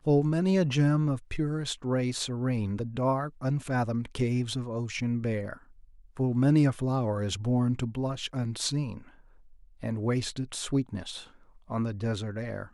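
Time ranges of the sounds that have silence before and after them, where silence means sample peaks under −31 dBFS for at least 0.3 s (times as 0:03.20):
0:06.19–0:08.97
0:09.84–0:11.17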